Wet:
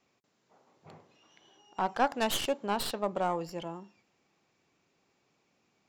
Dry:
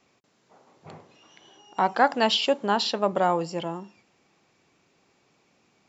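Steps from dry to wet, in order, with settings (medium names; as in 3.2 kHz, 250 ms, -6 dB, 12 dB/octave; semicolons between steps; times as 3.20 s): tracing distortion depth 0.16 ms; trim -8 dB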